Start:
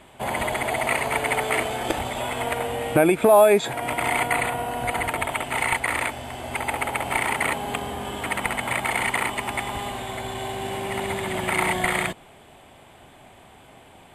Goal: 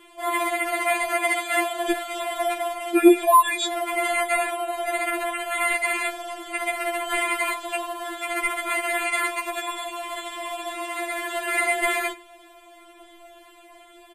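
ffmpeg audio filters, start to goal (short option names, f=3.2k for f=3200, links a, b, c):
-filter_complex "[0:a]asettb=1/sr,asplit=3[a][b][c];[a]atrim=end=1.074[d];[b]atrim=start=1.07:end=1.8,asetpts=PTS-STARTPTS,afade=t=in:d=0.004:c=qsin,afade=t=out:st=0.726:d=0.004:c=qsin,highpass=f=150:p=1[e];[c]atrim=start=1.796[f];[d][e]acrossfade=d=0.004:c1=hsin:c2=qsin[g];[g][f]acrossfade=d=0.004:c1=qsin:c2=hsin,asplit=2[h][i];[i]adelay=93.29,volume=-22dB,highshelf=f=4k:g=-2.1[j];[h][j]amix=inputs=2:normalize=0,afftfilt=real='re*4*eq(mod(b,16),0)':imag='im*4*eq(mod(b,16),0)':win_size=2048:overlap=0.75,volume=3dB"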